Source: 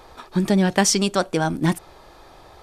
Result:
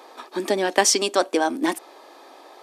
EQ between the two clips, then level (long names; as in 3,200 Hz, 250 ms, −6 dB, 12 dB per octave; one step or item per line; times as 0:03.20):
elliptic high-pass filter 260 Hz, stop band 50 dB
notch filter 1,400 Hz, Q 13
+2.0 dB